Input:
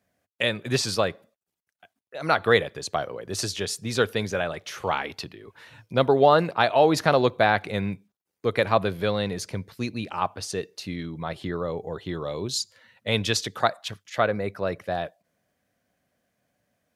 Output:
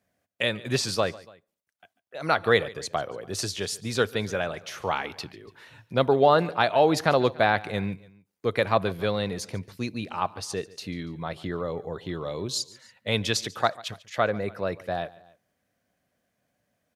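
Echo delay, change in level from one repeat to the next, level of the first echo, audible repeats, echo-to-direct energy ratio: 143 ms, −4.5 dB, −21.0 dB, 2, −19.5 dB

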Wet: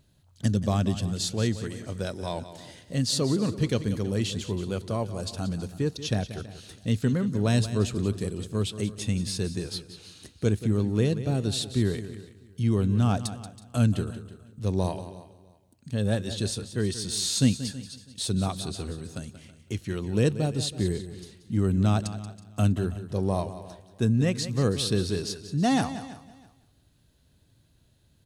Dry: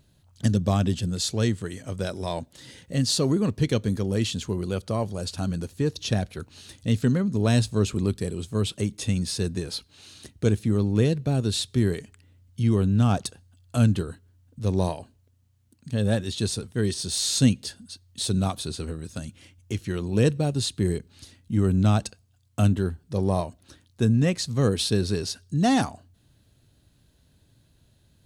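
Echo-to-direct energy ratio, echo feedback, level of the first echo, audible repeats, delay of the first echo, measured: −11.5 dB, repeats not evenly spaced, −13.0 dB, 5, 182 ms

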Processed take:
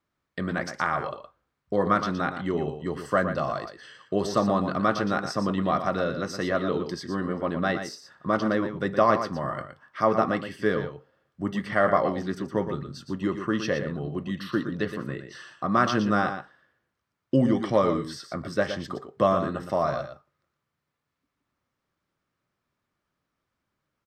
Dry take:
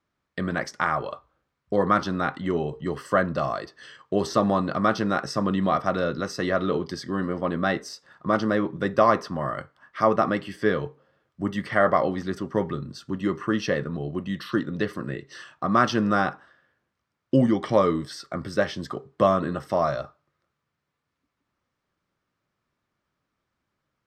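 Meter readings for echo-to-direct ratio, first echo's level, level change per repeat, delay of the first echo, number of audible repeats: −9.0 dB, −9.0 dB, repeats not evenly spaced, 117 ms, 1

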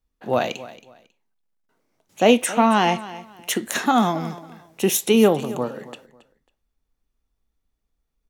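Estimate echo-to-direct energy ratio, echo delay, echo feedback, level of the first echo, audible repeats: −17.0 dB, 273 ms, 25%, −17.0 dB, 2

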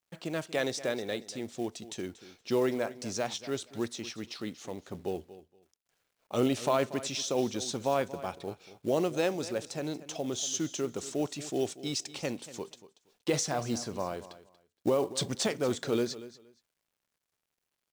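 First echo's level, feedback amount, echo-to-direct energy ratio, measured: −16.0 dB, 19%, −16.0 dB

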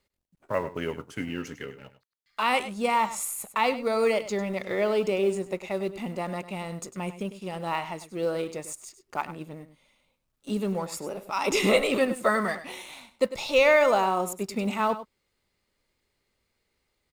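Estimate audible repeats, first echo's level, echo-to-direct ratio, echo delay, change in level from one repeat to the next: 1, −13.5 dB, −13.5 dB, 100 ms, repeats not evenly spaced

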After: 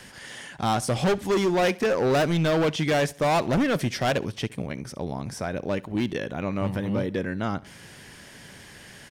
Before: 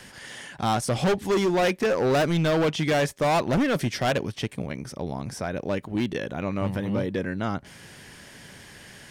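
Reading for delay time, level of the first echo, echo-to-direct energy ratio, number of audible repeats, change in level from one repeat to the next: 67 ms, −22.0 dB, −21.5 dB, 2, −8.5 dB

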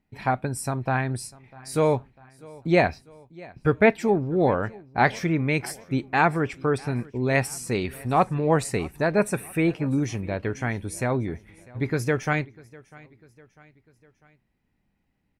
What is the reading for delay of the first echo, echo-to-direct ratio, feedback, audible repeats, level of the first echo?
648 ms, −22.0 dB, 51%, 3, −23.0 dB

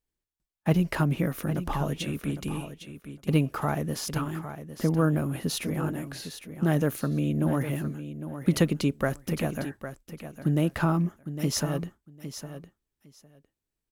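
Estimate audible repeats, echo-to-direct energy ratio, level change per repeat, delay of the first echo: 2, −11.0 dB, −16.0 dB, 807 ms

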